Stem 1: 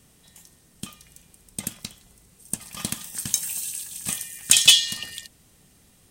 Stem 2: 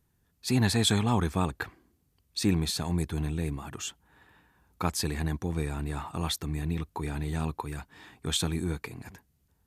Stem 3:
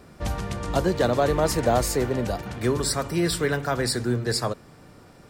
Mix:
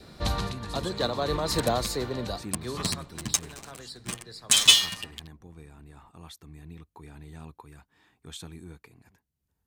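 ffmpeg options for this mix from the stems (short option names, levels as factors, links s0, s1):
-filter_complex "[0:a]adynamicsmooth=sensitivity=5.5:basefreq=520,asplit=2[s0][s1];[s1]adelay=8.4,afreqshift=-1.4[s2];[s0][s2]amix=inputs=2:normalize=1,volume=1.12[s3];[1:a]acompressor=mode=upward:threshold=0.00282:ratio=2.5,volume=0.141,asplit=2[s4][s5];[2:a]equalizer=f=4000:t=o:w=0.4:g=15,volume=0.944,afade=t=out:st=1.5:d=0.26:silence=0.316228,afade=t=out:st=2.94:d=0.23:silence=0.237137[s6];[s5]apad=whole_len=233336[s7];[s6][s7]sidechaincompress=threshold=0.00447:ratio=12:attack=7.9:release=232[s8];[s3][s4][s8]amix=inputs=3:normalize=0,adynamicequalizer=threshold=0.00158:dfrequency=1100:dqfactor=4.3:tfrequency=1100:tqfactor=4.3:attack=5:release=100:ratio=0.375:range=3:mode=boostabove:tftype=bell,dynaudnorm=f=560:g=5:m=1.58"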